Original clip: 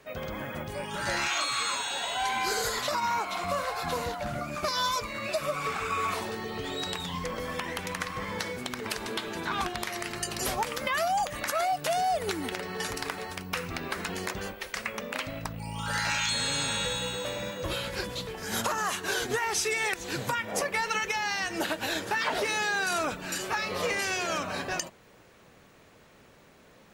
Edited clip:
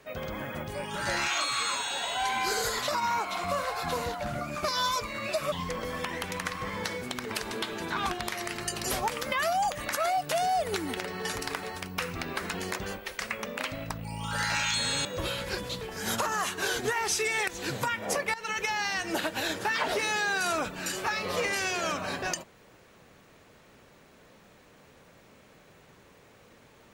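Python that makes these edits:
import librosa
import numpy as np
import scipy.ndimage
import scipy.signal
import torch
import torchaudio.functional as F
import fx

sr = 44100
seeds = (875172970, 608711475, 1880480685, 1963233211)

y = fx.edit(x, sr, fx.cut(start_s=5.52, length_s=1.55),
    fx.cut(start_s=16.6, length_s=0.91),
    fx.fade_in_from(start_s=20.8, length_s=0.27, floor_db=-16.5), tone=tone)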